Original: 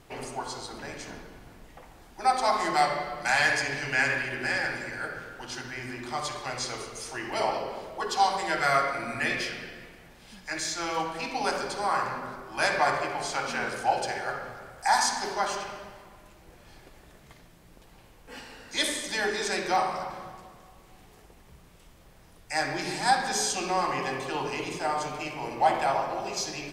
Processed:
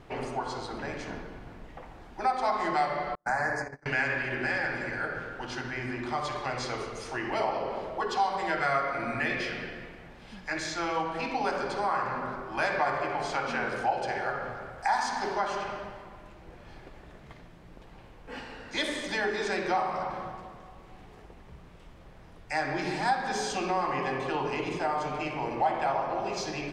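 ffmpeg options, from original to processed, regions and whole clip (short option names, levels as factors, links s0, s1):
-filter_complex "[0:a]asettb=1/sr,asplit=3[s0][s1][s2];[s0]atrim=end=3.154[s3];[s1]atrim=start=3.15:end=3.86,asetpts=PTS-STARTPTS,afade=t=in:d=0.004:c=qsin,afade=t=out:st=0.706:d=0.004:c=qsin,agate=range=0.00708:threshold=0.0316:ratio=16:release=100:detection=peak,asuperstop=centerf=3100:order=4:qfactor=0.71[s4];[s2]atrim=start=3.856[s5];[s3][s4]acrossfade=d=0.004:c1=hsin:c2=qsin[s6];[s6][s5]acrossfade=d=0.004:c1=qsin:c2=hsin,lowpass=f=3800:p=1,aemphasis=mode=reproduction:type=cd,acompressor=threshold=0.0224:ratio=2,volume=1.58"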